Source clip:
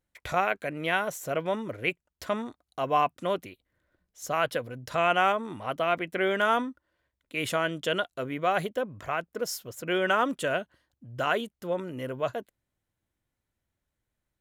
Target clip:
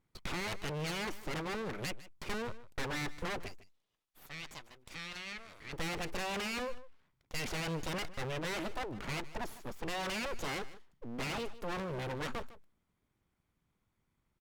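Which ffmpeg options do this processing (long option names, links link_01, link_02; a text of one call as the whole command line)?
ffmpeg -i in.wav -filter_complex "[0:a]acrossover=split=3500[link_01][link_02];[link_02]acompressor=threshold=-48dB:ratio=4:attack=1:release=60[link_03];[link_01][link_03]amix=inputs=2:normalize=0,highshelf=frequency=3700:gain=-11.5,aecho=1:1:0.9:0.59,alimiter=limit=-23.5dB:level=0:latency=1:release=12,asoftclip=type=tanh:threshold=-31.5dB,asettb=1/sr,asplit=3[link_04][link_05][link_06];[link_04]atrim=end=3.484[link_07];[link_05]atrim=start=3.48:end=5.73,asetpts=PTS-STARTPTS,afade=type=in:duration=0.004:curve=qsin,afade=type=out:start_time=2.246:duration=0.004:curve=qsin,bandpass=frequency=6600:width_type=q:width=0.51:csg=0[link_08];[link_06]atrim=start=5.726[link_09];[link_07][link_08]acrossfade=duration=0.004:curve1=hsin:curve2=qsin[link_10];[link_10][link_09]acrossfade=duration=0.004:curve1=qsin:curve2=hsin,aeval=exprs='abs(val(0))':channel_layout=same,aecho=1:1:153:0.141,volume=5dB" -ar 48000 -c:a libopus -b:a 256k out.opus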